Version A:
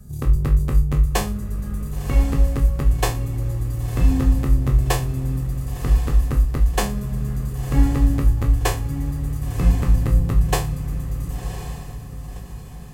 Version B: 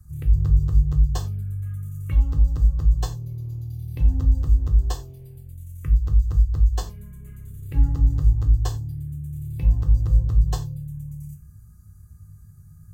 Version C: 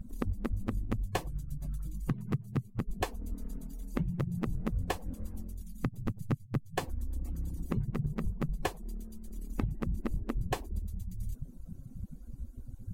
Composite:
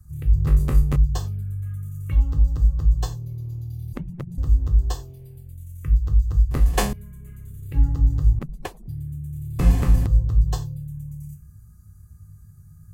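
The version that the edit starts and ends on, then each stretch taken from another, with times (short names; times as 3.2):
B
0.47–0.96 from A
3.93–4.38 from C
6.51–6.93 from A
8.39–8.88 from C
9.59–10.06 from A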